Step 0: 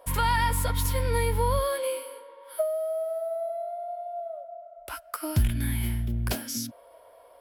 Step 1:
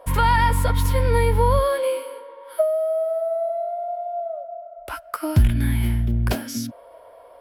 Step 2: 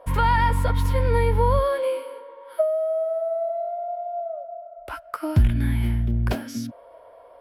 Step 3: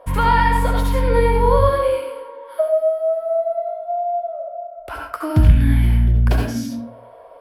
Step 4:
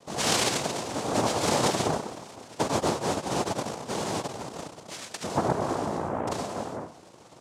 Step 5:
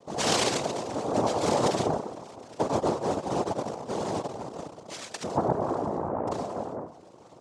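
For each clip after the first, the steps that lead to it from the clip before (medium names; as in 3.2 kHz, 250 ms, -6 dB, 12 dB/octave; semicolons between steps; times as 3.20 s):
treble shelf 3.2 kHz -9.5 dB; trim +7.5 dB
treble shelf 4.6 kHz -9 dB; trim -1.5 dB
reverberation RT60 0.45 s, pre-delay 64 ms, DRR 0.5 dB; trim +2.5 dB
noise-vocoded speech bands 2; trim -9 dB
resonances exaggerated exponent 1.5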